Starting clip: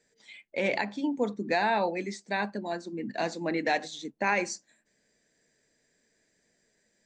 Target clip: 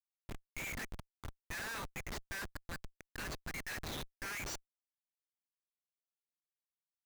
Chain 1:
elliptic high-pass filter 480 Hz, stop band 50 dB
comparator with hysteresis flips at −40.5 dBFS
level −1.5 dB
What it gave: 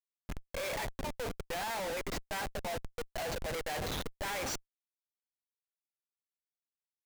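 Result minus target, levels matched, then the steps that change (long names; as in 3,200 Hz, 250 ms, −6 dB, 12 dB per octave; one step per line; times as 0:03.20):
500 Hz band +8.0 dB
change: elliptic high-pass filter 1,200 Hz, stop band 50 dB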